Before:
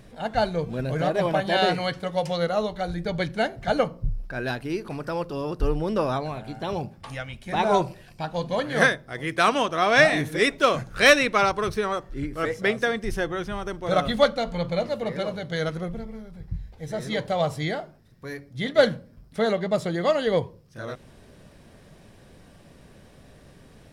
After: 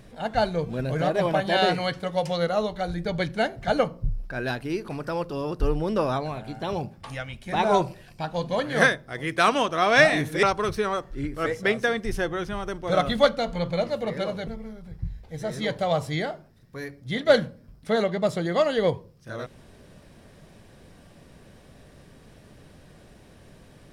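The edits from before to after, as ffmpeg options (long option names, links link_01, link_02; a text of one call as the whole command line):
ffmpeg -i in.wav -filter_complex "[0:a]asplit=3[link_01][link_02][link_03];[link_01]atrim=end=10.432[link_04];[link_02]atrim=start=11.418:end=15.462[link_05];[link_03]atrim=start=15.958[link_06];[link_04][link_05]acrossfade=duration=0.004:curve1=hsin:curve2=hsin[link_07];[link_07][link_06]acrossfade=duration=0.004:curve1=hsin:curve2=hsin" out.wav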